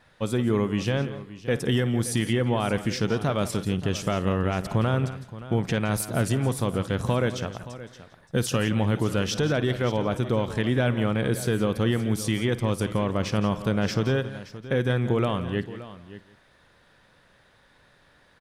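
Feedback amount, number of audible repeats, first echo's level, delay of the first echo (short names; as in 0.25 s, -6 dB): no steady repeat, 6, -18.0 dB, 54 ms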